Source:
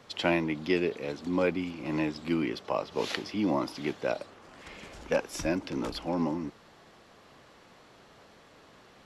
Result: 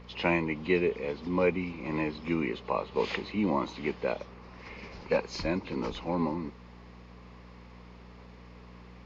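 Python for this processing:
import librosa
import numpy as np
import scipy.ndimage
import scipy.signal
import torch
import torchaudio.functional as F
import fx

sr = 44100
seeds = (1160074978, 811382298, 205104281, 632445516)

y = fx.freq_compress(x, sr, knee_hz=2400.0, ratio=1.5)
y = fx.add_hum(y, sr, base_hz=60, snr_db=16)
y = fx.ripple_eq(y, sr, per_octave=0.85, db=7)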